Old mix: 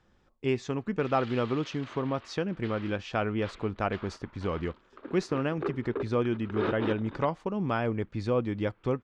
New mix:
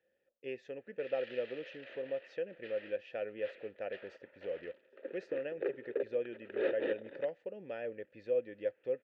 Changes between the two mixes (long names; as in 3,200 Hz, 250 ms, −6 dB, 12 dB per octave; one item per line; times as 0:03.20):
background +8.5 dB
master: add formant filter e